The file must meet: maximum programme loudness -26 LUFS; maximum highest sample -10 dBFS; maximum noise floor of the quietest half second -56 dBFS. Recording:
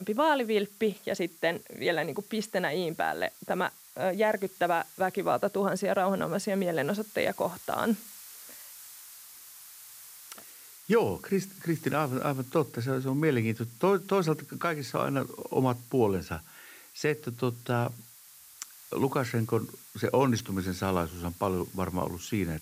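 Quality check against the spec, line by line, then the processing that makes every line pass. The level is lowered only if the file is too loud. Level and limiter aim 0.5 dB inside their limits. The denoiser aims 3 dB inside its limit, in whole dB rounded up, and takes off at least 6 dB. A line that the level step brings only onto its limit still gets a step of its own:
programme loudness -30.0 LUFS: OK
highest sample -14.0 dBFS: OK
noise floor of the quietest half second -53 dBFS: fail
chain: denoiser 6 dB, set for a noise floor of -53 dBFS

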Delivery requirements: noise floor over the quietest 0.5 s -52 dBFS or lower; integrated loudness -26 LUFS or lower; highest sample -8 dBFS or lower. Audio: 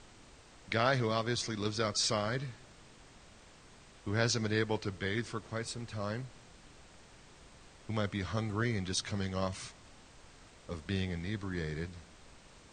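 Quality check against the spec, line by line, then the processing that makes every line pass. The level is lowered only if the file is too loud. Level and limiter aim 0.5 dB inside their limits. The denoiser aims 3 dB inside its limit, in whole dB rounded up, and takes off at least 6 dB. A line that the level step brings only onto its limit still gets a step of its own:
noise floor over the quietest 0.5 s -57 dBFS: OK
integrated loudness -35.0 LUFS: OK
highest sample -13.0 dBFS: OK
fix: none

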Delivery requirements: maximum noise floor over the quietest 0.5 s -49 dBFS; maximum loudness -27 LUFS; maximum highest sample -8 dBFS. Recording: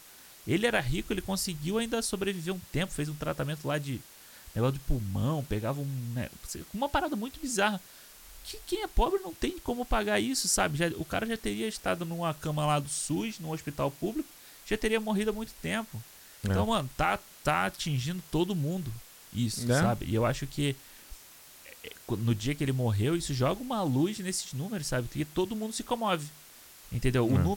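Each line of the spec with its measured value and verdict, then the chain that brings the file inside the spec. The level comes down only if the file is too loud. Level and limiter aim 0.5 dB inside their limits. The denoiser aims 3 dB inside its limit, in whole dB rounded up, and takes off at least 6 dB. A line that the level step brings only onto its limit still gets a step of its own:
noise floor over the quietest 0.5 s -52 dBFS: OK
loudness -31.0 LUFS: OK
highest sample -13.5 dBFS: OK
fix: none

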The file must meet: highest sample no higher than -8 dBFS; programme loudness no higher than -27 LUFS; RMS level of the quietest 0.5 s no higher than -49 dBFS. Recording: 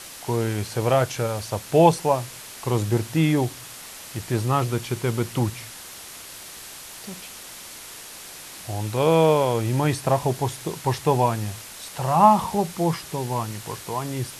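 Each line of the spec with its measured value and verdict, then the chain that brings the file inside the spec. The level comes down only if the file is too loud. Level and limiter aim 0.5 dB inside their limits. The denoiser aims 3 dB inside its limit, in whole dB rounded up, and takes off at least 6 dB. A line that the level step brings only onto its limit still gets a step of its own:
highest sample -2.5 dBFS: fail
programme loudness -23.0 LUFS: fail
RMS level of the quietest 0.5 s -40 dBFS: fail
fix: denoiser 8 dB, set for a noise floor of -40 dBFS; gain -4.5 dB; limiter -8.5 dBFS

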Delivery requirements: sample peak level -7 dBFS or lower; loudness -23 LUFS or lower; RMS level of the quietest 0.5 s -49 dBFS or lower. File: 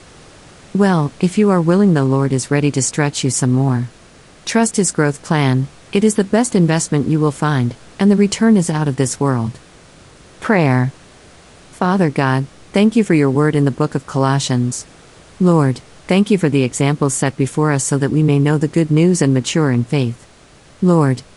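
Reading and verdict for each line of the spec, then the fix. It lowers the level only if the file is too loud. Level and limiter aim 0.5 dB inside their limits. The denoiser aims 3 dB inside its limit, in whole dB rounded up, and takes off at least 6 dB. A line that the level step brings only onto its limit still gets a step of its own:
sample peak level -2.5 dBFS: fail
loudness -15.5 LUFS: fail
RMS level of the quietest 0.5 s -45 dBFS: fail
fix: gain -8 dB

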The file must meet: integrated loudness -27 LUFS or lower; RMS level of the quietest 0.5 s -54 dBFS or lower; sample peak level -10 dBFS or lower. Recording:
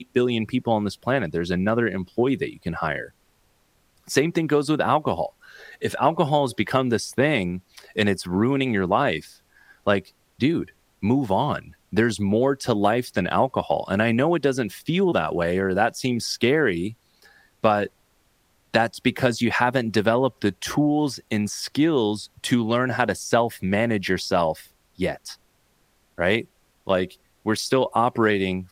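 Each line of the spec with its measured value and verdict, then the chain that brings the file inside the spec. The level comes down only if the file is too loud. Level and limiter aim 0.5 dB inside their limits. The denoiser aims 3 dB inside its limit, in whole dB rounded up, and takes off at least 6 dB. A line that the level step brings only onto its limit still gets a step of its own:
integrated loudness -23.0 LUFS: fail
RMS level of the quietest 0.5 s -64 dBFS: OK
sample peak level -4.0 dBFS: fail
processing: gain -4.5 dB; limiter -10.5 dBFS

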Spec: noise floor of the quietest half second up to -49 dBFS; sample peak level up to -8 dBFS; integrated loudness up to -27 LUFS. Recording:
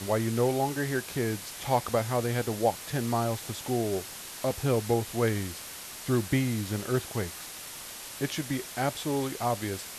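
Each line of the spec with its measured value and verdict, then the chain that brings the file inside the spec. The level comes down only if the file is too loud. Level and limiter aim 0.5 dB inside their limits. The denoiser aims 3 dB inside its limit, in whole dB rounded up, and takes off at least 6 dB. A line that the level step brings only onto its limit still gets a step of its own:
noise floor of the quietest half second -42 dBFS: fail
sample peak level -12.0 dBFS: OK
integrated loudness -30.0 LUFS: OK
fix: denoiser 10 dB, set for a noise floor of -42 dBFS

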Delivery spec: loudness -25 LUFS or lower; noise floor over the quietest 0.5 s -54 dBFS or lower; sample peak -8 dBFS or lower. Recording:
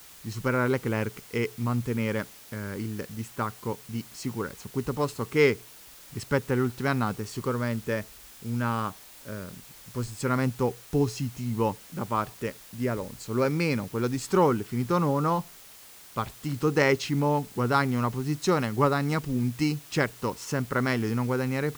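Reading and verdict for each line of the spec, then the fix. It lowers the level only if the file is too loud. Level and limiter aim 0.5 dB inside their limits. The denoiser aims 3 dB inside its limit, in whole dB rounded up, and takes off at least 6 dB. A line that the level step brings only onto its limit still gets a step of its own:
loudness -28.5 LUFS: OK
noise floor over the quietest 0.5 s -49 dBFS: fail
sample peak -6.5 dBFS: fail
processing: denoiser 8 dB, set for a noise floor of -49 dBFS; limiter -8.5 dBFS

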